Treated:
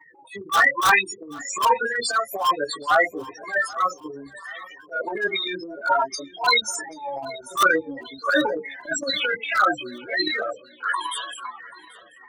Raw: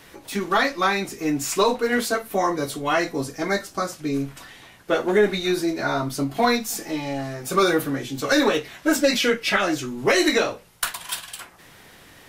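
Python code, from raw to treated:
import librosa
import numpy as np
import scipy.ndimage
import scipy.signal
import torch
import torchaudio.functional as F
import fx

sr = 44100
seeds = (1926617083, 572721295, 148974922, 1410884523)

p1 = fx.octave_divider(x, sr, octaves=1, level_db=-2.0)
p2 = fx.spec_topn(p1, sr, count=8)
p3 = fx.highpass_res(p2, sr, hz=1100.0, q=4.0)
p4 = fx.tilt_eq(p3, sr, slope=3.5, at=(6.0, 6.62))
p5 = (np.mod(10.0 ** (9.0 / 20.0) * p4 + 1.0, 2.0) - 1.0) / 10.0 ** (9.0 / 20.0)
p6 = p4 + F.gain(torch.from_numpy(p5), -4.0).numpy()
p7 = fx.chorus_voices(p6, sr, voices=2, hz=0.62, base_ms=13, depth_ms=3.3, mix_pct=50)
p8 = np.clip(p7, -10.0 ** (-15.5 / 20.0), 10.0 ** (-15.5 / 20.0))
p9 = fx.transient(p8, sr, attack_db=-12, sustain_db=9)
p10 = p9 + fx.echo_feedback(p9, sr, ms=784, feedback_pct=45, wet_db=-21.0, dry=0)
y = F.gain(torch.from_numpy(p10), 4.5).numpy()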